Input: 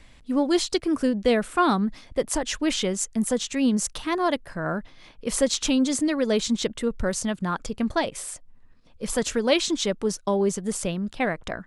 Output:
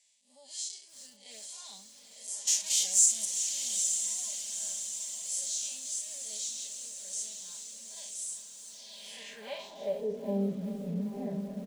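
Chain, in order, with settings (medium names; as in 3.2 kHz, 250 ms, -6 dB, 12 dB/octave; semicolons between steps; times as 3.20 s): spectral blur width 117 ms; 2.47–3.25 s: waveshaping leveller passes 5; peaking EQ 230 Hz -5.5 dB 0.79 oct; static phaser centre 350 Hz, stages 6; comb 5 ms, depth 99%; echo that smears into a reverb 930 ms, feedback 58%, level -6 dB; band-pass sweep 7.2 kHz -> 250 Hz, 8.65–10.37 s; on a send at -21 dB: treble shelf 5.1 kHz +5 dB + reverberation RT60 5.4 s, pre-delay 90 ms; on the sum: bit-crushed delay 385 ms, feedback 55%, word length 8-bit, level -12.5 dB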